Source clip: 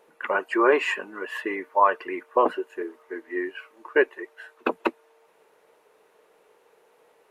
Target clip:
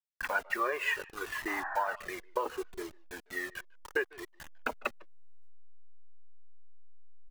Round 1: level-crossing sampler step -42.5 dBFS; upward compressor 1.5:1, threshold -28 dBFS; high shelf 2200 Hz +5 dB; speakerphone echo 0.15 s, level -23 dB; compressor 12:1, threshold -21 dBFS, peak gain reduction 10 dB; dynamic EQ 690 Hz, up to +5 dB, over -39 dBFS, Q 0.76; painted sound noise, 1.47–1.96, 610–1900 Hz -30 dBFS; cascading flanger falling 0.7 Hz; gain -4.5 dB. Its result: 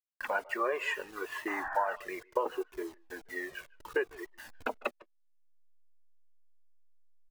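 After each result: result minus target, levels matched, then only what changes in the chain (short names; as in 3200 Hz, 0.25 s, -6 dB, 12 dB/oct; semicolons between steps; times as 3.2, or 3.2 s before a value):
level-crossing sampler: distortion -9 dB; 500 Hz band +3.0 dB
change: level-crossing sampler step -35 dBFS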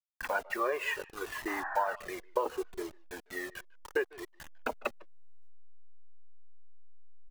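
500 Hz band +3.0 dB
change: dynamic EQ 1500 Hz, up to +5 dB, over -39 dBFS, Q 0.76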